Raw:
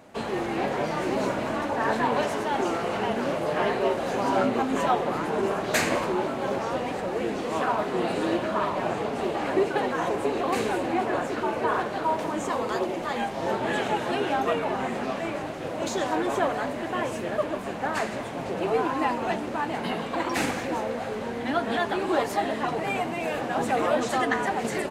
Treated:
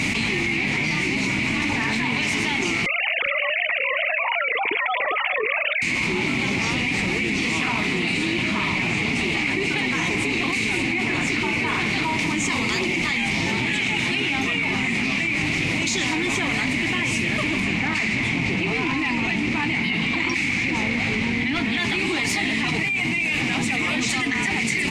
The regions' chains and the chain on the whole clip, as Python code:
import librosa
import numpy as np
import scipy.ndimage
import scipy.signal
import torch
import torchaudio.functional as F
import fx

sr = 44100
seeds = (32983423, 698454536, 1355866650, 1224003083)

y = fx.chain(x, sr, fx.sine_speech(),
    fx.echo_single(ms=403, db=-15.0), at=(2.86, 5.82))
y = fx.chain(y, sr, fx.lowpass(hz=3800.0, slope=6),
    fx.clip_hard(threshold_db=-19.0), at=(17.6, 21.78))
y = fx.curve_eq(y, sr, hz=(140.0, 300.0, 560.0, 910.0, 1600.0, 2200.0, 3200.0, 5300.0, 8700.0, 14000.0), db=(0, -4, -23, -12, -12, 13, 2, 4, 0, -13))
y = fx.env_flatten(y, sr, amount_pct=100)
y = y * 10.0 ** (-4.0 / 20.0)